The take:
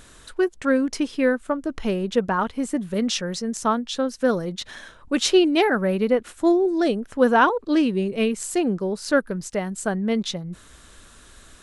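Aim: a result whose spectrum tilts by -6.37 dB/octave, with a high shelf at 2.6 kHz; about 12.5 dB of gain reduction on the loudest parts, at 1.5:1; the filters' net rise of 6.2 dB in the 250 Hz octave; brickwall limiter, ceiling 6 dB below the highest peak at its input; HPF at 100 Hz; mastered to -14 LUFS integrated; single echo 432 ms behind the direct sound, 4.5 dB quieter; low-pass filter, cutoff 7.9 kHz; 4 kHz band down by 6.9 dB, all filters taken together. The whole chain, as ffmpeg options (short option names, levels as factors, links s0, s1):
-af "highpass=100,lowpass=7900,equalizer=f=250:t=o:g=8,highshelf=f=2600:g=-3.5,equalizer=f=4000:t=o:g=-6,acompressor=threshold=0.00501:ratio=1.5,alimiter=limit=0.075:level=0:latency=1,aecho=1:1:432:0.596,volume=6.68"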